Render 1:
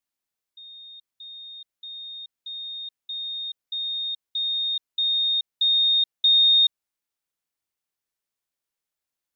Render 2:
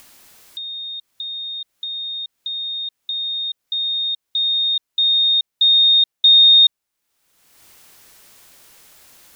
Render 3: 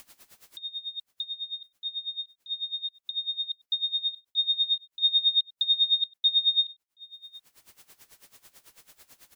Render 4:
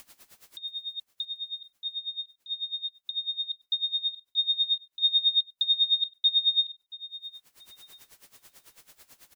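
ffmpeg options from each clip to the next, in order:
ffmpeg -i in.wav -af "acompressor=mode=upward:threshold=-30dB:ratio=2.5,volume=7dB" out.wav
ffmpeg -i in.wav -af "alimiter=limit=-13dB:level=0:latency=1:release=19,aecho=1:1:727:0.0668,aeval=exprs='val(0)*pow(10,-19*(0.5-0.5*cos(2*PI*9.1*n/s))/20)':channel_layout=same,volume=-2dB" out.wav
ffmpeg -i in.wav -af "aecho=1:1:679|1358:0.106|0.0275" out.wav

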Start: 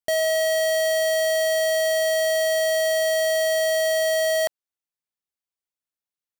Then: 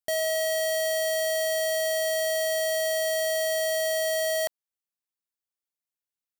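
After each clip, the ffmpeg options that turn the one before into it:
ffmpeg -i in.wav -af "highshelf=frequency=6000:gain=5.5,volume=-5.5dB" out.wav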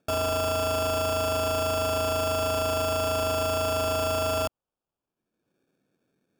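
ffmpeg -i in.wav -filter_complex "[0:a]acrossover=split=120|510|6400[link_01][link_02][link_03][link_04];[link_02]acompressor=mode=upward:threshold=-45dB:ratio=2.5[link_05];[link_01][link_05][link_03][link_04]amix=inputs=4:normalize=0,acrusher=samples=22:mix=1:aa=0.000001" out.wav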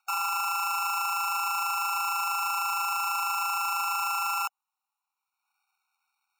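ffmpeg -i in.wav -af "alimiter=level_in=2.5dB:limit=-24dB:level=0:latency=1,volume=-2.5dB,afftfilt=real='re*eq(mod(floor(b*sr/1024/740),2),1)':imag='im*eq(mod(floor(b*sr/1024/740),2),1)':win_size=1024:overlap=0.75,volume=7dB" out.wav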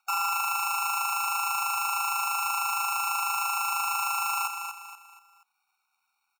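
ffmpeg -i in.wav -af "aecho=1:1:239|478|717|956:0.447|0.17|0.0645|0.0245,volume=1.5dB" out.wav

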